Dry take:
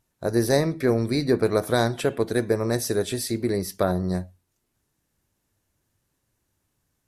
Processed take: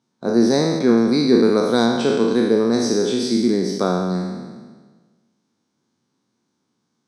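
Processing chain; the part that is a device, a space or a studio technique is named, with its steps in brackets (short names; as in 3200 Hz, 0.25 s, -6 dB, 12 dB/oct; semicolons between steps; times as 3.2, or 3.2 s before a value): spectral trails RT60 1.44 s; television speaker (speaker cabinet 160–6500 Hz, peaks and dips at 230 Hz +8 dB, 610 Hz -8 dB, 1800 Hz -9 dB, 2700 Hz -8 dB); notch 7200 Hz, Q 7.7; 0.97–1.86 high shelf 9600 Hz +8.5 dB; gain +3 dB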